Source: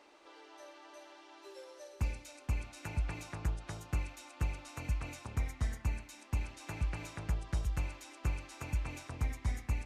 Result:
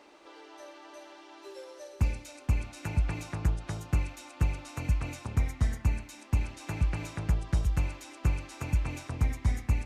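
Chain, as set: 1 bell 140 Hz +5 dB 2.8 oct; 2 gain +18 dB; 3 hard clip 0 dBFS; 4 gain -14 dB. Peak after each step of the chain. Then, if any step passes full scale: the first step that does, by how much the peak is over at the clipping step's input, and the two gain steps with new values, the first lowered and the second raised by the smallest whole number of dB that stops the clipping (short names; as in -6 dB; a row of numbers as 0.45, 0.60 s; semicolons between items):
-20.0, -2.0, -2.0, -16.0 dBFS; no overload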